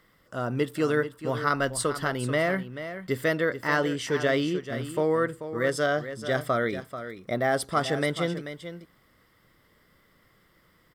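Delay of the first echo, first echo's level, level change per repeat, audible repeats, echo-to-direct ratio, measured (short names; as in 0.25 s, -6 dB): 0.437 s, -11.0 dB, no steady repeat, 1, -11.0 dB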